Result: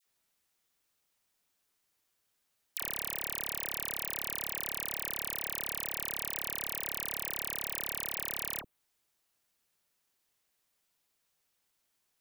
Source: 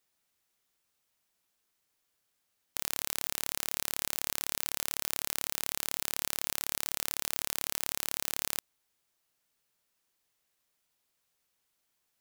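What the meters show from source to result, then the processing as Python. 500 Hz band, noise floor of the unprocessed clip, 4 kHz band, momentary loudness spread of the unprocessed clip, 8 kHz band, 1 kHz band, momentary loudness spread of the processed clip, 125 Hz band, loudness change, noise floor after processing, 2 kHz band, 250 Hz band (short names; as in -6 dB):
0.0 dB, -79 dBFS, -5.0 dB, 1 LU, -4.5 dB, -0.5 dB, 1 LU, 0.0 dB, -1.5 dB, -79 dBFS, -1.0 dB, 0.0 dB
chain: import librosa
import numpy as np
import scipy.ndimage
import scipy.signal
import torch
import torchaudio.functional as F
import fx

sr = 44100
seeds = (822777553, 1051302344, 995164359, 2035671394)

y = fx.dynamic_eq(x, sr, hz=5700.0, q=0.95, threshold_db=-56.0, ratio=4.0, max_db=-8)
y = fx.dispersion(y, sr, late='lows', ms=57.0, hz=1300.0)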